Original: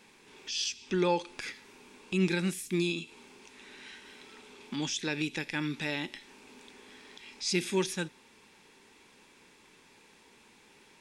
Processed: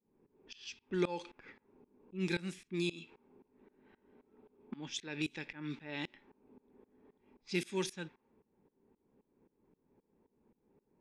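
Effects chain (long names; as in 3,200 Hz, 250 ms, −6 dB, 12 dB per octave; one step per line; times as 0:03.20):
shaped tremolo saw up 3.8 Hz, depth 95%
low-pass that shuts in the quiet parts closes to 420 Hz, open at −30.5 dBFS
level −2.5 dB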